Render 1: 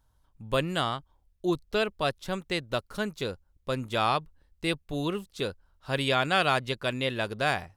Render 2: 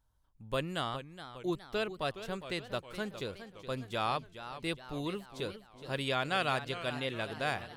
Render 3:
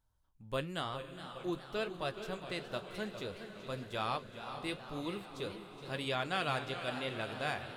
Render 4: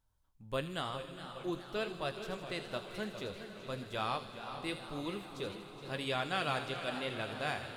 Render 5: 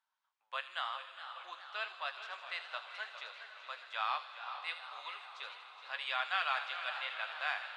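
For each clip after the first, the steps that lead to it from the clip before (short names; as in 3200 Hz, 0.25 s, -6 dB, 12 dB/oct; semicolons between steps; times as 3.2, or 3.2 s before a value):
warbling echo 0.415 s, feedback 53%, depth 161 cents, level -12 dB; gain -7 dB
diffused feedback echo 0.471 s, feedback 62%, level -11 dB; flange 0.97 Hz, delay 8.8 ms, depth 6.9 ms, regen -60%; gain +1 dB
thin delay 79 ms, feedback 63%, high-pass 3600 Hz, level -7 dB; on a send at -16 dB: reverb RT60 2.6 s, pre-delay 3 ms
Bessel high-pass 1400 Hz, order 6; tape spacing loss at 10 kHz 29 dB; gain +10.5 dB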